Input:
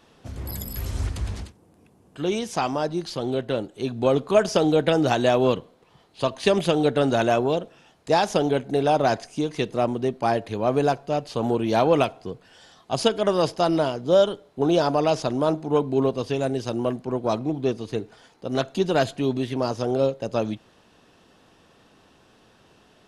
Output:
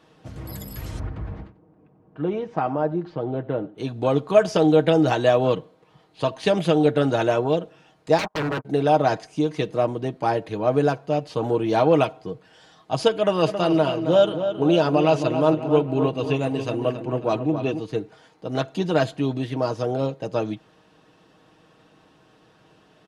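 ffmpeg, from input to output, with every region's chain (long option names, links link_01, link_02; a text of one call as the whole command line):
ffmpeg -i in.wav -filter_complex "[0:a]asettb=1/sr,asplit=3[link_01][link_02][link_03];[link_01]atrim=end=0.994[link_04];[link_02]atrim=start=0.99:end=3.78,asetpts=PTS-STARTPTS,afade=type=in:duration=0.004:curve=qsin,afade=type=out:start_time=2.786:duration=0.004:curve=qsin,lowpass=1500,aecho=1:1:92:0.106,atrim=end_sample=123039[link_05];[link_03]atrim=start=3.776[link_06];[link_04][link_05]acrossfade=duration=0.004:curve1=hsin:curve2=qsin[link_07];[link_07][link_06]acrossfade=duration=0.004:curve1=qsin:curve2=hsin,asettb=1/sr,asplit=3[link_08][link_09][link_10];[link_08]atrim=end=8.184[link_11];[link_09]atrim=start=8.18:end=8.65,asetpts=PTS-STARTPTS,afade=type=in:duration=0.004:curve=qsin,afade=type=out:start_time=0.466:duration=0.004:curve=qsin,agate=range=-36dB:threshold=-26dB:ratio=16:release=100:detection=peak,lowpass=frequency=1100:width_type=q:width=4.7,aeval=exprs='0.0944*(abs(mod(val(0)/0.0944+3,4)-2)-1)':channel_layout=same[link_12];[link_10]atrim=start=8.646[link_13];[link_11][link_12]acrossfade=duration=0.004:curve1=hsin:curve2=qsin[link_14];[link_14][link_13]acrossfade=duration=0.004:curve1=qsin:curve2=hsin,asettb=1/sr,asplit=3[link_15][link_16][link_17];[link_15]atrim=end=13.124[link_18];[link_16]atrim=start=13.12:end=17.8,asetpts=PTS-STARTPTS,afade=type=in:duration=0.004:curve=qsin,afade=type=out:start_time=4.676:duration=0.004:curve=qsin,equalizer=frequency=2700:width_type=o:width=0.27:gain=9,bandreject=frequency=5300:width=8.6,asplit=2[link_19][link_20];[link_20]adelay=271,lowpass=frequency=2900:poles=1,volume=-8.5dB,asplit=2[link_21][link_22];[link_22]adelay=271,lowpass=frequency=2900:poles=1,volume=0.52,asplit=2[link_23][link_24];[link_24]adelay=271,lowpass=frequency=2900:poles=1,volume=0.52,asplit=2[link_25][link_26];[link_26]adelay=271,lowpass=frequency=2900:poles=1,volume=0.52,asplit=2[link_27][link_28];[link_28]adelay=271,lowpass=frequency=2900:poles=1,volume=0.52,asplit=2[link_29][link_30];[link_30]adelay=271,lowpass=frequency=2900:poles=1,volume=0.52[link_31];[link_19][link_21][link_23][link_25][link_27][link_29][link_31]amix=inputs=7:normalize=0,atrim=end_sample=206388[link_32];[link_17]atrim=start=17.796[link_33];[link_18][link_32]acrossfade=duration=0.004:curve1=hsin:curve2=qsin[link_34];[link_34][link_33]acrossfade=duration=0.004:curve1=qsin:curve2=hsin,highpass=51,highshelf=frequency=4200:gain=-7.5,aecho=1:1:6.4:0.52" out.wav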